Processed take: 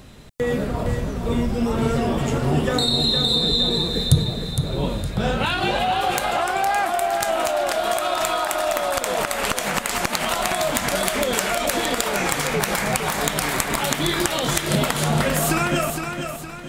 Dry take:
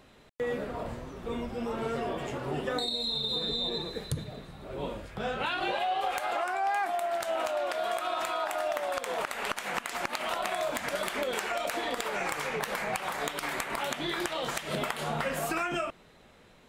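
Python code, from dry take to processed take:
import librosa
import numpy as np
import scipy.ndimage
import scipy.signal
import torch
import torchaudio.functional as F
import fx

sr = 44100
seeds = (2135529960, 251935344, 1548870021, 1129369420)

y = fx.bass_treble(x, sr, bass_db=11, treble_db=8)
y = fx.echo_feedback(y, sr, ms=462, feedback_pct=42, wet_db=-7)
y = F.gain(torch.from_numpy(y), 7.5).numpy()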